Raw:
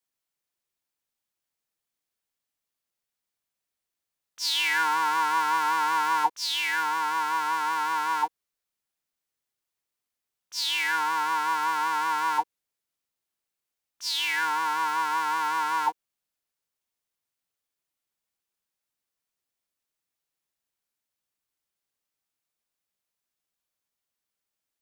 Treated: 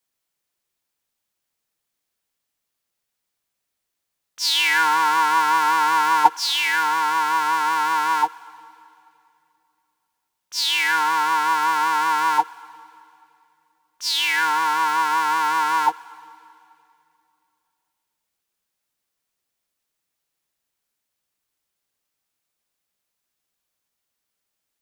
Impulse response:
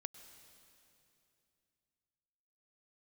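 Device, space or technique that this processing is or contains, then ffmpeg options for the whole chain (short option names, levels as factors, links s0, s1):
keyed gated reverb: -filter_complex "[0:a]asplit=3[s0][s1][s2];[1:a]atrim=start_sample=2205[s3];[s1][s3]afir=irnorm=-1:irlink=0[s4];[s2]apad=whole_len=1094491[s5];[s4][s5]sidechaingate=range=0.224:threshold=0.1:ratio=16:detection=peak,volume=3.55[s6];[s0][s6]amix=inputs=2:normalize=0,volume=1.41"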